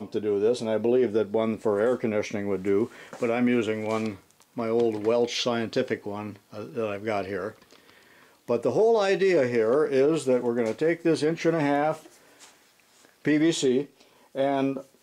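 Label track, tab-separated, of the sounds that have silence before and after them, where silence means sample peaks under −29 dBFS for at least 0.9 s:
8.490000	11.940000	sound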